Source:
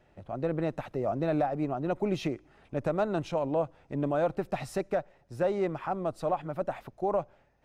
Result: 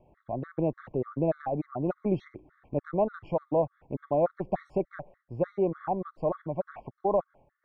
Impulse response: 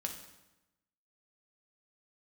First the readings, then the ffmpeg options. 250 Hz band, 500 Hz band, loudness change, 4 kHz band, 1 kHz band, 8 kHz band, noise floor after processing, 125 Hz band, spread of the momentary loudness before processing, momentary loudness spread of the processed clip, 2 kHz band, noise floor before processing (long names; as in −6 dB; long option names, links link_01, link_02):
0.0 dB, +1.0 dB, +0.5 dB, below −15 dB, −0.5 dB, below −25 dB, −81 dBFS, +0.5 dB, 6 LU, 8 LU, −6.5 dB, −65 dBFS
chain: -af "lowpass=1300,afftfilt=real='re*gt(sin(2*PI*3.4*pts/sr)*(1-2*mod(floor(b*sr/1024/1100),2)),0)':imag='im*gt(sin(2*PI*3.4*pts/sr)*(1-2*mod(floor(b*sr/1024/1100),2)),0)':win_size=1024:overlap=0.75,volume=3.5dB"